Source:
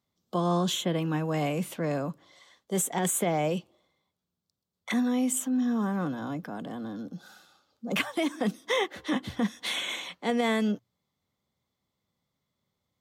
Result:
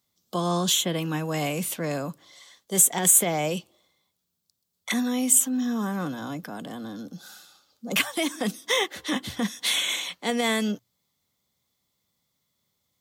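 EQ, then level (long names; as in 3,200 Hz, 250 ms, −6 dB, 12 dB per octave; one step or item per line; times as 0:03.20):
high-shelf EQ 2,500 Hz +9.5 dB
high-shelf EQ 6,500 Hz +5 dB
0.0 dB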